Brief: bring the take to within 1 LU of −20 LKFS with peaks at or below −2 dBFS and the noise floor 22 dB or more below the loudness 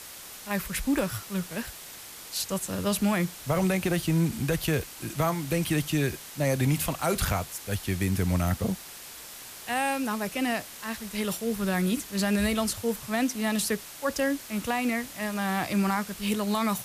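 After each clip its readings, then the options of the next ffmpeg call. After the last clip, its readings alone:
background noise floor −44 dBFS; target noise floor −51 dBFS; integrated loudness −28.5 LKFS; sample peak −14.5 dBFS; target loudness −20.0 LKFS
→ -af "afftdn=noise_reduction=7:noise_floor=-44"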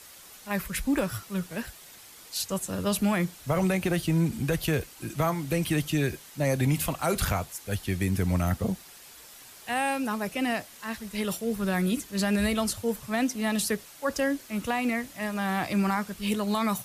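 background noise floor −49 dBFS; target noise floor −51 dBFS
→ -af "afftdn=noise_reduction=6:noise_floor=-49"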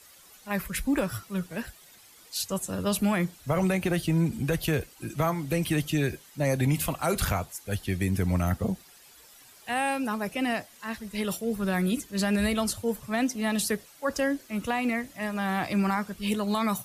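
background noise floor −54 dBFS; integrated loudness −28.5 LKFS; sample peak −15.0 dBFS; target loudness −20.0 LKFS
→ -af "volume=8.5dB"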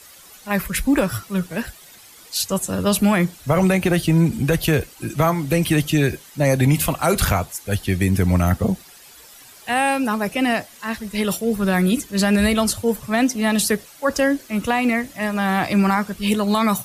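integrated loudness −20.0 LKFS; sample peak −6.5 dBFS; background noise floor −45 dBFS

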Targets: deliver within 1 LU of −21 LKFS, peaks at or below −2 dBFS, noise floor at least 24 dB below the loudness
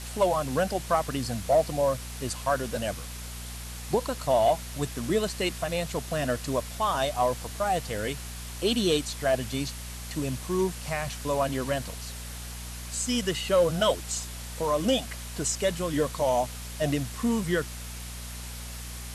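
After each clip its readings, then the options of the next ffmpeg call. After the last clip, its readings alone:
mains hum 60 Hz; hum harmonics up to 240 Hz; level of the hum −38 dBFS; background noise floor −39 dBFS; target noise floor −53 dBFS; integrated loudness −28.5 LKFS; sample peak −12.5 dBFS; target loudness −21.0 LKFS
→ -af "bandreject=frequency=60:width_type=h:width=4,bandreject=frequency=120:width_type=h:width=4,bandreject=frequency=180:width_type=h:width=4,bandreject=frequency=240:width_type=h:width=4"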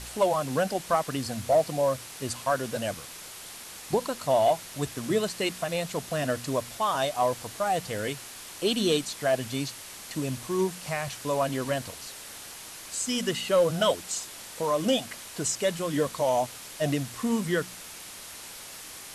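mains hum none found; background noise floor −43 dBFS; target noise floor −53 dBFS
→ -af "afftdn=noise_reduction=10:noise_floor=-43"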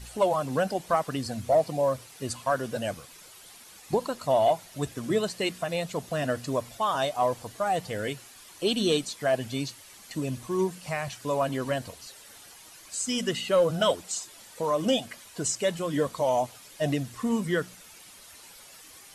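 background noise floor −50 dBFS; target noise floor −53 dBFS
→ -af "afftdn=noise_reduction=6:noise_floor=-50"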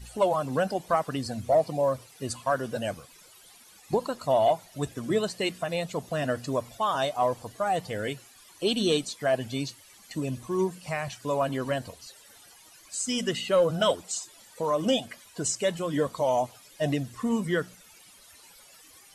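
background noise floor −54 dBFS; integrated loudness −28.5 LKFS; sample peak −13.0 dBFS; target loudness −21.0 LKFS
→ -af "volume=7.5dB"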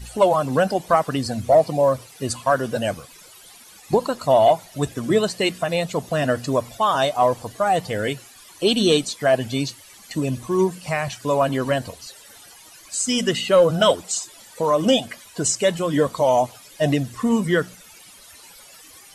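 integrated loudness −21.0 LKFS; sample peak −5.5 dBFS; background noise floor −47 dBFS

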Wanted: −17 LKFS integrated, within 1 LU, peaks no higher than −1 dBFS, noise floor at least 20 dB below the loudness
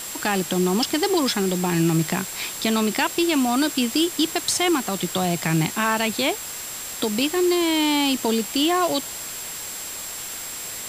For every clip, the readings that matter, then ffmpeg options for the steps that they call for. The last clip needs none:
interfering tone 7,600 Hz; level of the tone −35 dBFS; background noise floor −33 dBFS; target noise floor −43 dBFS; integrated loudness −22.5 LKFS; sample peak −7.0 dBFS; target loudness −17.0 LKFS
→ -af "bandreject=frequency=7600:width=30"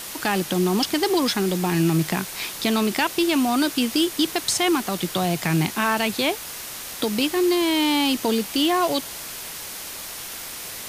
interfering tone none found; background noise floor −35 dBFS; target noise floor −43 dBFS
→ -af "afftdn=noise_reduction=8:noise_floor=-35"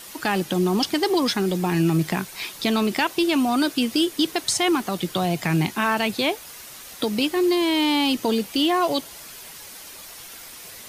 background noise floor −41 dBFS; target noise floor −42 dBFS
→ -af "afftdn=noise_reduction=6:noise_floor=-41"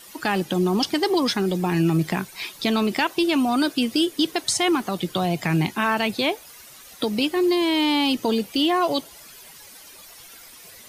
background noise floor −45 dBFS; integrated loudness −22.5 LKFS; sample peak −8.5 dBFS; target loudness −17.0 LKFS
→ -af "volume=5.5dB"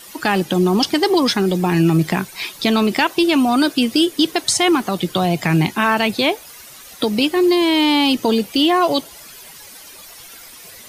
integrated loudness −17.0 LKFS; sample peak −3.0 dBFS; background noise floor −40 dBFS

